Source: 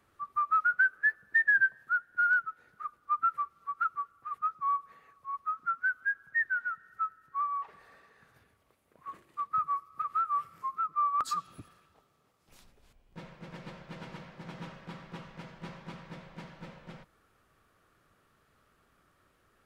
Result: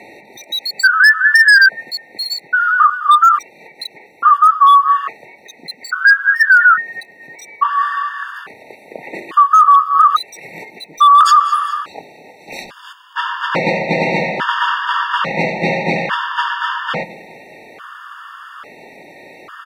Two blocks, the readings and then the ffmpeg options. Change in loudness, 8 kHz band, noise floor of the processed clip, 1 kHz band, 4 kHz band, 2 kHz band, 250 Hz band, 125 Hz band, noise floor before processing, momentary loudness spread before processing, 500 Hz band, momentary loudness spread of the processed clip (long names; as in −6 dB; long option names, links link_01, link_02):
+18.0 dB, +23.0 dB, −45 dBFS, +20.5 dB, +33.0 dB, +18.0 dB, +22.0 dB, +19.0 dB, −70 dBFS, 21 LU, +30.0 dB, 21 LU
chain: -filter_complex "[0:a]acrossover=split=170 3700:gain=0.0631 1 0.158[link_01][link_02][link_03];[link_01][link_02][link_03]amix=inputs=3:normalize=0,asplit=2[link_04][link_05];[link_05]adelay=24,volume=-13.5dB[link_06];[link_04][link_06]amix=inputs=2:normalize=0,asplit=2[link_07][link_08];[link_08]aecho=0:1:205|410|615:0.1|0.045|0.0202[link_09];[link_07][link_09]amix=inputs=2:normalize=0,asoftclip=type=hard:threshold=-26dB,lowshelf=frequency=440:gain=-10.5,asplit=2[link_10][link_11];[link_11]acompressor=threshold=-45dB:ratio=6,volume=-2dB[link_12];[link_10][link_12]amix=inputs=2:normalize=0,alimiter=level_in=35dB:limit=-1dB:release=50:level=0:latency=1,afftfilt=real='re*gt(sin(2*PI*0.59*pts/sr)*(1-2*mod(floor(b*sr/1024/910),2)),0)':imag='im*gt(sin(2*PI*0.59*pts/sr)*(1-2*mod(floor(b*sr/1024/910),2)),0)':win_size=1024:overlap=0.75,volume=-1.5dB"